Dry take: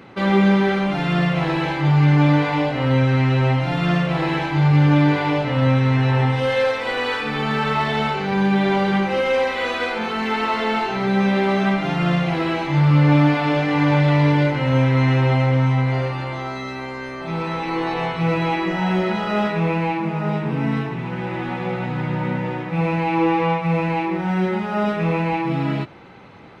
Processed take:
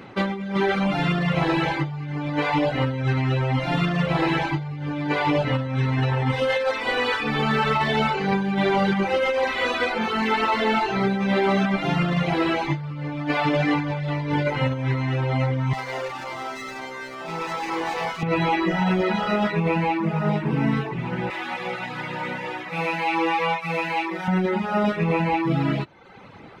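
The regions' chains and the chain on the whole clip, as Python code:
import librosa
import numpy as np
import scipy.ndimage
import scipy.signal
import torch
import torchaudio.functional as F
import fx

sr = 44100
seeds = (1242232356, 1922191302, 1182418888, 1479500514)

y = fx.chain(x, sr, fx.highpass(hz=590.0, slope=6),
    fx.running_max(window=5), at=(15.73, 18.23))
y = fx.chain(y, sr, fx.highpass(hz=710.0, slope=6),
    fx.high_shelf(hz=2800.0, db=7.5), at=(21.3, 24.28))
y = fx.dereverb_blind(y, sr, rt60_s=0.76)
y = fx.over_compress(y, sr, threshold_db=-21.0, ratio=-0.5)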